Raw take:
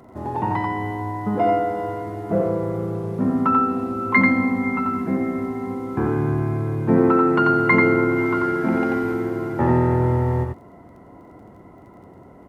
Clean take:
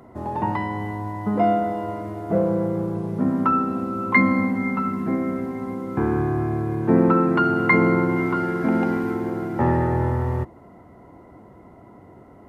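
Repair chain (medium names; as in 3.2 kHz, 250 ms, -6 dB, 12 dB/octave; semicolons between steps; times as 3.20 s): de-click; inverse comb 89 ms -3.5 dB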